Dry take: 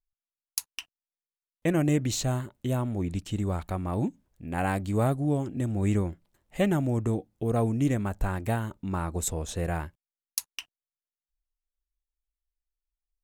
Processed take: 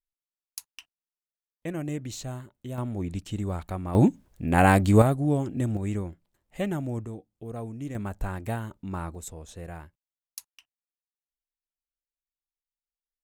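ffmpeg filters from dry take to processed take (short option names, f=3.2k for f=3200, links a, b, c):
-af "asetnsamples=n=441:p=0,asendcmd='2.78 volume volume -1.5dB;3.95 volume volume 9.5dB;5.02 volume volume 2dB;5.77 volume volume -4.5dB;7.05 volume volume -10.5dB;7.95 volume volume -3dB;9.15 volume volume -10dB;10.45 volume volume -17dB',volume=-8dB"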